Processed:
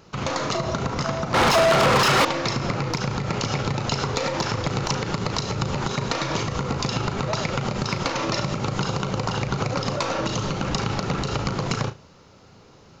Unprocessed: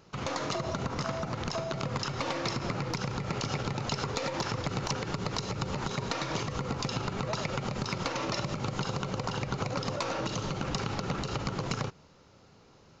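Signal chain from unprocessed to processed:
flutter between parallel walls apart 6.2 metres, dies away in 0.21 s
0:01.34–0:02.25: mid-hump overdrive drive 33 dB, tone 3,500 Hz, clips at −17 dBFS
level +7 dB

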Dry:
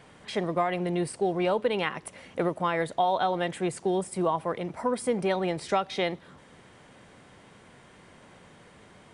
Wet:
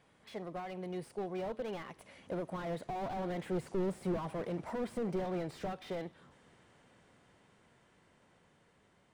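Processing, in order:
source passing by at 0:04.07, 12 m/s, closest 14 metres
slew-rate limiting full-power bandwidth 14 Hz
level −3 dB

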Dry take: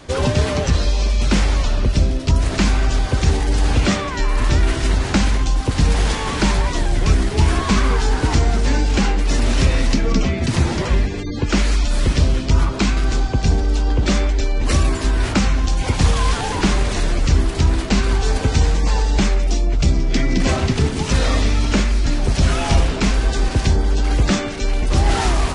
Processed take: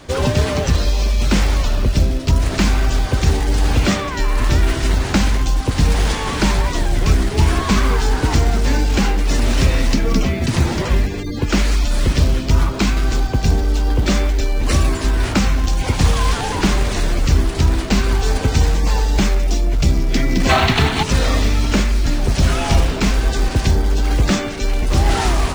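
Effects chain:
gain on a spectral selection 0:20.50–0:21.03, 630–4,500 Hz +10 dB
in parallel at −5 dB: floating-point word with a short mantissa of 2 bits
on the sum: level −3 dB

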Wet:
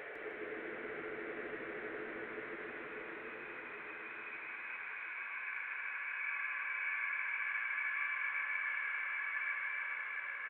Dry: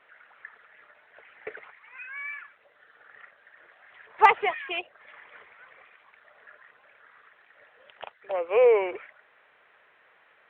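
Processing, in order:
square-wave tremolo 1.7 Hz, depth 65%, duty 10%
extreme stretch with random phases 8.5×, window 1.00 s, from 0:01.35
echo with shifted repeats 155 ms, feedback 36%, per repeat −96 Hz, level −4 dB
level +6.5 dB

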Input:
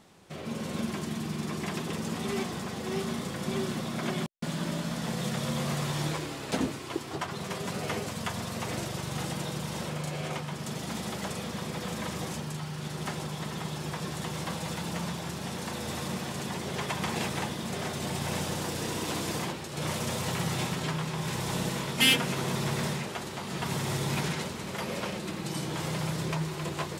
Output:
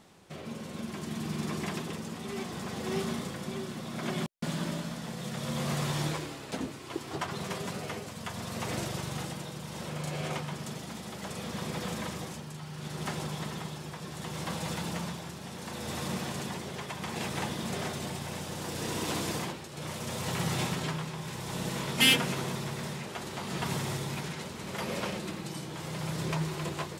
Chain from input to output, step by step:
amplitude tremolo 0.68 Hz, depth 52%

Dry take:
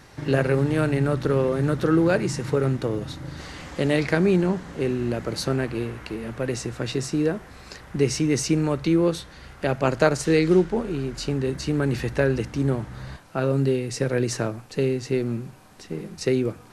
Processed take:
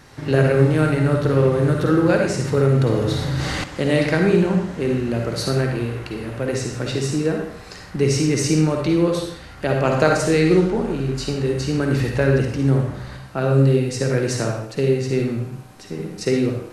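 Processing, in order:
convolution reverb RT60 0.65 s, pre-delay 45 ms, DRR 1.5 dB
0:02.57–0:03.64: envelope flattener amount 50%
level +1.5 dB

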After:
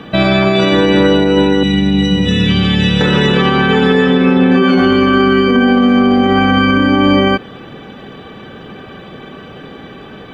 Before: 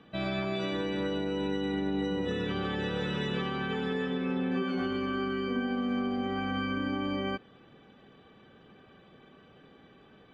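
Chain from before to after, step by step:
0:01.63–0:03.01: flat-topped bell 710 Hz −13 dB 2.8 octaves
boost into a limiter +25 dB
level −1 dB

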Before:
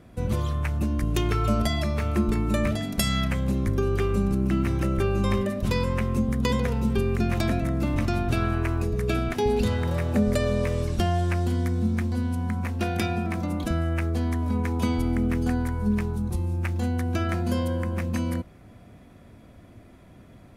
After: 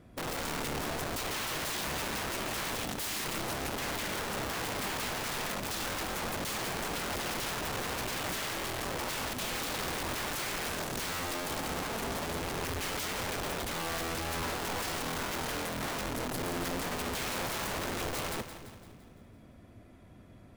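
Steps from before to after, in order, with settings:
wrap-around overflow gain 25.5 dB
echo with a time of its own for lows and highs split 410 Hz, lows 269 ms, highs 170 ms, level −11 dB
level −5.5 dB

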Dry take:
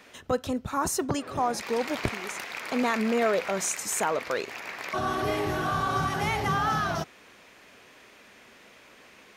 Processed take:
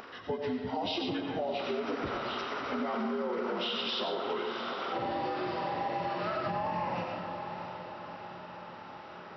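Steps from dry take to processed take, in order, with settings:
partials spread apart or drawn together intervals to 76%
0:05.21–0:06.47: low-shelf EQ 210 Hz −10.5 dB
on a send: feedback delay with all-pass diffusion 704 ms, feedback 58%, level −13.5 dB
on the sum: comb and all-pass reverb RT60 0.78 s, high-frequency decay 0.85×, pre-delay 50 ms, DRR 3.5 dB
upward compression, threshold −41 dBFS
brickwall limiter −19.5 dBFS, peak gain reduction 6 dB
downward compressor 3 to 1, threshold −31 dBFS, peak gain reduction 6 dB

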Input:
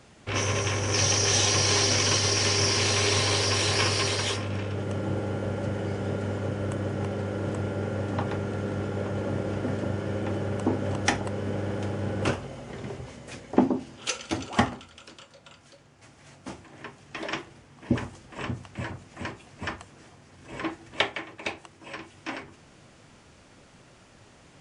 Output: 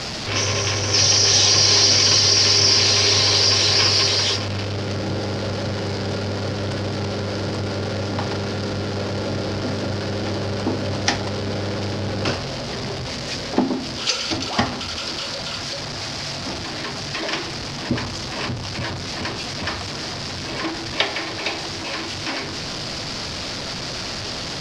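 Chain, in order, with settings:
converter with a step at zero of −25.5 dBFS
low-pass with resonance 4,900 Hz, resonance Q 3.9
parametric band 660 Hz +2.5 dB 0.2 octaves

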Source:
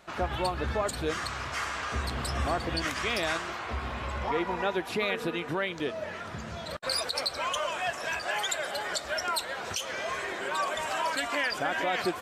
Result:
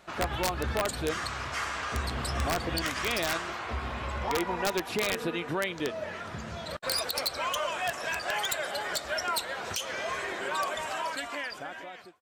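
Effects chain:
fade-out on the ending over 1.72 s
wrap-around overflow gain 19.5 dB

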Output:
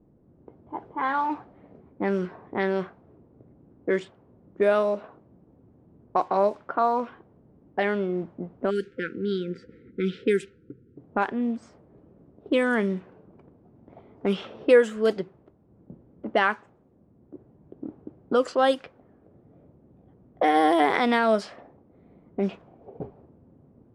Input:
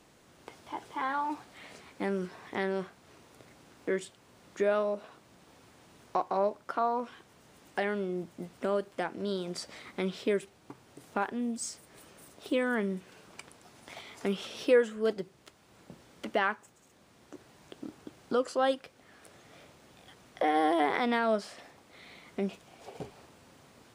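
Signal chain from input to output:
low-pass that shuts in the quiet parts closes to 300 Hz, open at −24 dBFS
time-frequency box erased 0:08.70–0:10.97, 520–1,300 Hz
level +6.5 dB

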